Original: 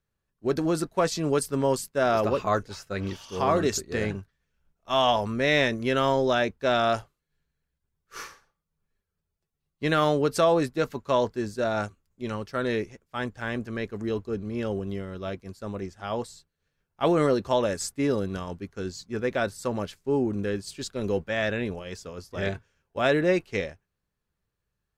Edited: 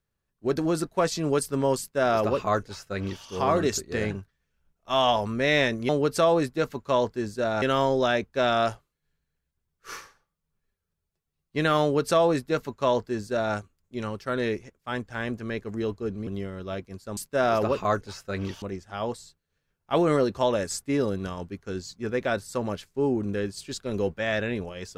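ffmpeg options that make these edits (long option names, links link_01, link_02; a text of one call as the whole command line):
ffmpeg -i in.wav -filter_complex "[0:a]asplit=6[link_01][link_02][link_03][link_04][link_05][link_06];[link_01]atrim=end=5.892[link_07];[link_02]atrim=start=10.088:end=11.822[link_08];[link_03]atrim=start=5.888:end=14.542[link_09];[link_04]atrim=start=14.818:end=15.722[link_10];[link_05]atrim=start=1.788:end=3.242[link_11];[link_06]atrim=start=15.718[link_12];[link_07][link_08]acrossfade=duration=0.004:curve1=hsin:curve2=hsin[link_13];[link_13][link_09]acrossfade=duration=0.004:curve1=hsin:curve2=hsin[link_14];[link_14][link_10]acrossfade=duration=0.004:curve1=hsin:curve2=hsin[link_15];[link_15][link_11]acrossfade=duration=0.004:curve1=hsin:curve2=hsin[link_16];[link_16][link_12]acrossfade=duration=0.004:curve1=hsin:curve2=hsin" out.wav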